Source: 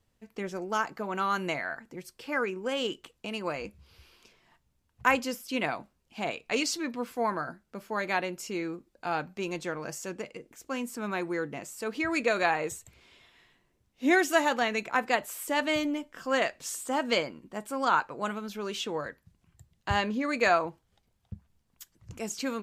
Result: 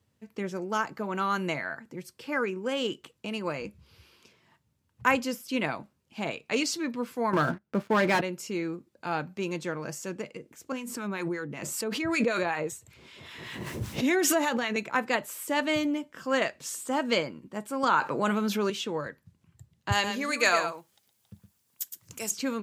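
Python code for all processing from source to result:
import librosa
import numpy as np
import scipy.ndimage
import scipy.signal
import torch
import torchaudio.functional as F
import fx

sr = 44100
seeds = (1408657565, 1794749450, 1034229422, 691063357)

y = fx.chain(x, sr, fx.lowpass(hz=2000.0, slope=6),
    fx.leveller(passes=3), at=(7.33, 8.21))
y = fx.chain(y, sr, fx.harmonic_tremolo(hz=5.2, depth_pct=70, crossover_hz=860.0),
    fx.pre_swell(db_per_s=27.0), at=(10.72, 14.76))
y = fx.chain(y, sr, fx.highpass(hz=140.0, slope=12),
    fx.env_flatten(amount_pct=50), at=(17.83, 18.7))
y = fx.chain(y, sr, fx.riaa(side='recording'),
    fx.echo_single(ms=115, db=-8.0), at=(19.92, 22.31))
y = scipy.signal.sosfilt(scipy.signal.butter(4, 91.0, 'highpass', fs=sr, output='sos'), y)
y = fx.low_shelf(y, sr, hz=180.0, db=8.0)
y = fx.notch(y, sr, hz=720.0, q=12.0)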